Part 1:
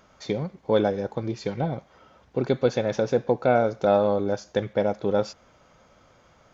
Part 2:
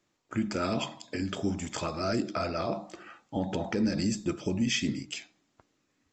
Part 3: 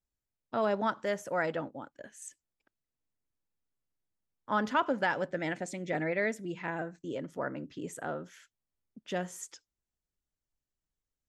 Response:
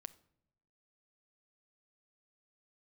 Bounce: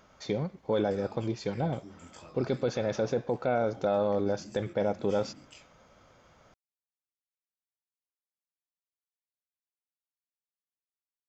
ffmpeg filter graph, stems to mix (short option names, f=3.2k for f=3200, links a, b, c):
-filter_complex "[0:a]volume=-2.5dB[a];[1:a]acompressor=threshold=-37dB:ratio=2.5,flanger=delay=20:depth=4.1:speed=1.6,adelay=400,volume=-9dB[b];[a][b]amix=inputs=2:normalize=0,alimiter=limit=-19dB:level=0:latency=1:release=16"